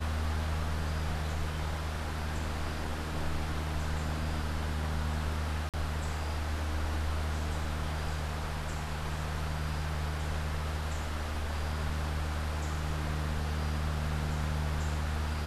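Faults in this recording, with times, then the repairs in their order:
5.69–5.74 gap 47 ms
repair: interpolate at 5.69, 47 ms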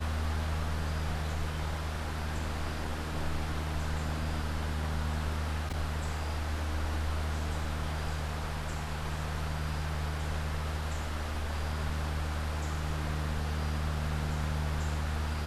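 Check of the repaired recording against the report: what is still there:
none

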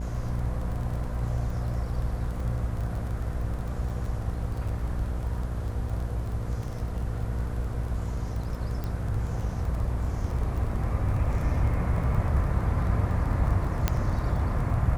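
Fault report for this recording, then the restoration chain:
buzz 60 Hz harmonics 13 -32 dBFS
crackle 24/s -34 dBFS
8.84 pop -21 dBFS
13.88 pop -9 dBFS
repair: de-click; de-hum 60 Hz, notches 13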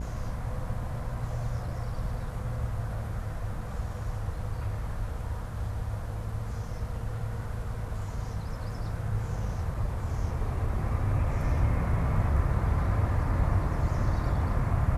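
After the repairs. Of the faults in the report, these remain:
none

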